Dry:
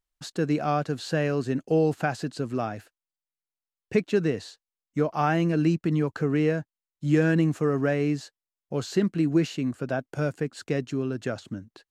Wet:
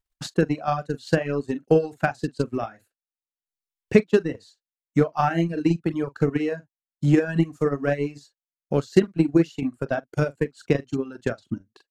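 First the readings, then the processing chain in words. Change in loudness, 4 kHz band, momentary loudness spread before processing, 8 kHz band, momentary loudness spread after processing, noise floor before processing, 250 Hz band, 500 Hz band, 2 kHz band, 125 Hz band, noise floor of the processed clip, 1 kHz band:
+2.5 dB, -0.5 dB, 11 LU, n/a, 10 LU, under -85 dBFS, +2.0 dB, +3.0 dB, +1.5 dB, +1.0 dB, under -85 dBFS, +2.0 dB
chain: doubler 42 ms -6 dB; transient shaper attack +10 dB, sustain -7 dB; reverb removal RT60 0.91 s; gain -1.5 dB

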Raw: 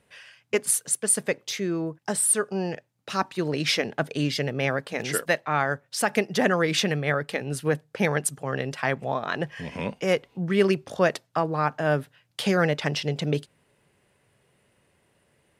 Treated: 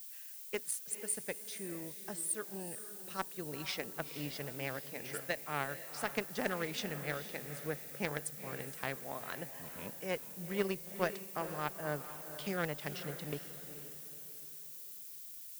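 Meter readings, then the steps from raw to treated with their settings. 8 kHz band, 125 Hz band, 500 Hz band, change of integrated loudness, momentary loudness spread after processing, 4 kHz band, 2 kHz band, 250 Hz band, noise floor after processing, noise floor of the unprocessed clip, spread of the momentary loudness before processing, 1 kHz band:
-14.0 dB, -16.0 dB, -15.0 dB, -14.0 dB, 9 LU, -14.5 dB, -13.5 dB, -15.0 dB, -49 dBFS, -68 dBFS, 8 LU, -13.5 dB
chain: added harmonics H 3 -13 dB, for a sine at -7 dBFS; diffused feedback echo 0.464 s, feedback 40%, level -11 dB; added noise violet -41 dBFS; gain -8 dB

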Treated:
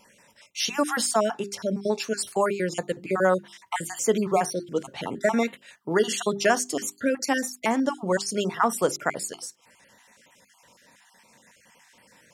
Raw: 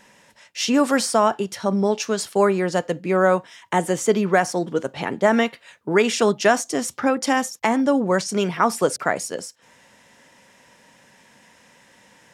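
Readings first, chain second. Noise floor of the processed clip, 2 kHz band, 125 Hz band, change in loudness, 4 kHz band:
-60 dBFS, -4.5 dB, -6.5 dB, -5.0 dB, -3.0 dB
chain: random spectral dropouts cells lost 35%; high shelf 6700 Hz +7.5 dB; notches 50/100/150/200/250/300/350/400 Hz; gain -3.5 dB

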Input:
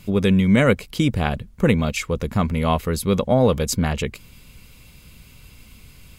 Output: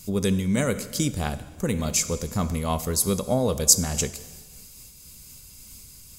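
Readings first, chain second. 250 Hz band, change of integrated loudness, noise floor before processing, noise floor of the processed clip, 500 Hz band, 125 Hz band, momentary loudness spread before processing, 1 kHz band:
-6.5 dB, -3.5 dB, -48 dBFS, -47 dBFS, -6.5 dB, -6.5 dB, 8 LU, -6.5 dB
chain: resonant high shelf 4200 Hz +13.5 dB, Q 1.5; plate-style reverb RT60 1.5 s, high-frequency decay 0.95×, DRR 11.5 dB; noise-modulated level, depth 50%; gain -3.5 dB

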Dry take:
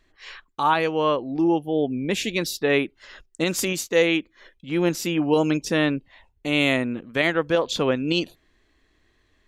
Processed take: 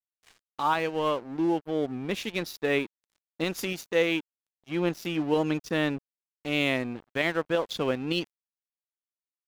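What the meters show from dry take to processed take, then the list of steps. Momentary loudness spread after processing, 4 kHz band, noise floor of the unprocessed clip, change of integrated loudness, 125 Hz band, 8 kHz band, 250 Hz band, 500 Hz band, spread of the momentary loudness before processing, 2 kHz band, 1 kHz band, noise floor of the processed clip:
7 LU, -6.0 dB, -65 dBFS, -5.5 dB, -5.5 dB, -12.5 dB, -6.0 dB, -5.5 dB, 7 LU, -5.5 dB, -5.5 dB, under -85 dBFS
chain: bell 8000 Hz -12 dB 0.42 oct; crossover distortion -36.5 dBFS; gain -4.5 dB

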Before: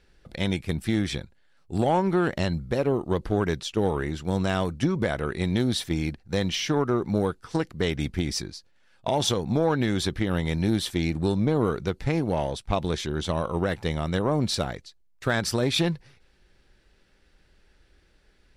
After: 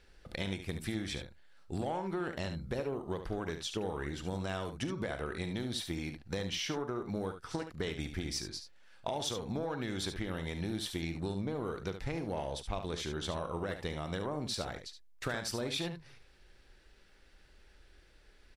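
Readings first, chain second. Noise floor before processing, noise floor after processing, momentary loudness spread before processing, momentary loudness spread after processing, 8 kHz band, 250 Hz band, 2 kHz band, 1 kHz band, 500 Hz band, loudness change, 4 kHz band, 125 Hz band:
-62 dBFS, -61 dBFS, 6 LU, 5 LU, -8.0 dB, -12.5 dB, -9.5 dB, -11.0 dB, -11.5 dB, -11.5 dB, -8.5 dB, -12.5 dB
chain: bell 150 Hz -5 dB 2.2 oct; compressor 4:1, threshold -35 dBFS, peak gain reduction 13.5 dB; early reflections 42 ms -15.5 dB, 72 ms -9 dB

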